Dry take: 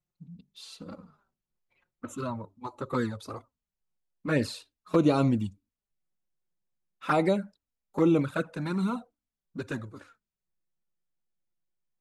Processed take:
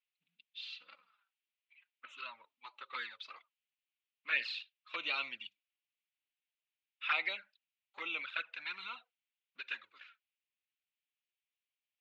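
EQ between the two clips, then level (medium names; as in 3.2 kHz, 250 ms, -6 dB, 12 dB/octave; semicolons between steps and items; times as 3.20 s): resonant high-pass 2.6 kHz, resonance Q 2.4; low-pass 3.5 kHz 24 dB/octave; +2.0 dB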